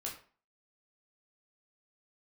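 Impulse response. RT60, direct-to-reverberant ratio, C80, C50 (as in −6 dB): 0.45 s, −3.0 dB, 12.5 dB, 7.5 dB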